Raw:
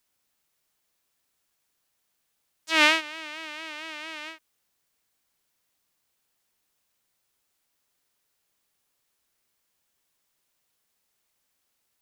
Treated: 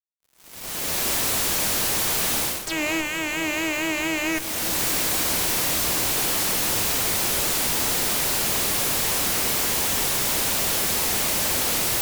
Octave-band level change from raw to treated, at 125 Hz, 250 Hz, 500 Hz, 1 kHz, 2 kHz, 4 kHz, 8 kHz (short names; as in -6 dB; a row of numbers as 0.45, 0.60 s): n/a, +12.5 dB, +11.5 dB, +8.0 dB, +4.5 dB, +9.5 dB, +25.5 dB